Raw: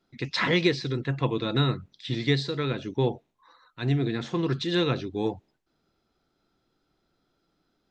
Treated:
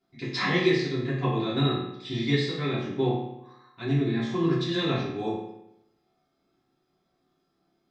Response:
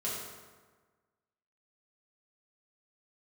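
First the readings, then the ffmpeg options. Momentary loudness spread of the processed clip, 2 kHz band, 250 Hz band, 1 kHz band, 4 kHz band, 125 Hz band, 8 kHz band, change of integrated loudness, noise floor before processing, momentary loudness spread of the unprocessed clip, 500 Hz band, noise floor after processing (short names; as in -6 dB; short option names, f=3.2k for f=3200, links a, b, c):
10 LU, -0.5 dB, +1.5 dB, +1.0 dB, -1.0 dB, -0.5 dB, n/a, 0.0 dB, -75 dBFS, 8 LU, +0.5 dB, -74 dBFS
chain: -filter_complex "[1:a]atrim=start_sample=2205,asetrate=74970,aresample=44100[a];[0:a][a]afir=irnorm=-1:irlink=0"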